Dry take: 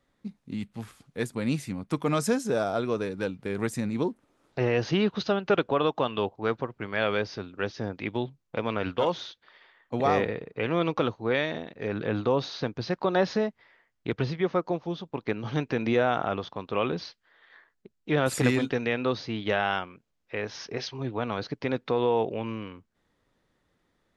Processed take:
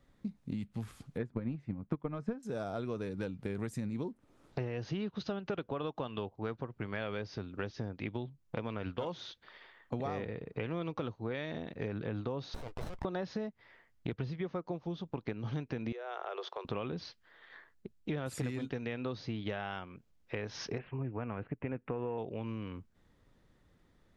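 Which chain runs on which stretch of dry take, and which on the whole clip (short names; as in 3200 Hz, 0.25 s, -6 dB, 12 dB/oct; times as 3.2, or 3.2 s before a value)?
1.18–2.43 LPF 1800 Hz + transient shaper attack +12 dB, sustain -2 dB
12.54–13.05 HPF 570 Hz 24 dB/oct + negative-ratio compressor -39 dBFS + running maximum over 17 samples
15.92–16.65 Chebyshev high-pass 370 Hz, order 6 + compressor 2:1, threshold -38 dBFS
20.78–22.18 switching dead time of 0.062 ms + Chebyshev low-pass 2700 Hz, order 5
whole clip: low shelf 200 Hz +10.5 dB; compressor 6:1, threshold -35 dBFS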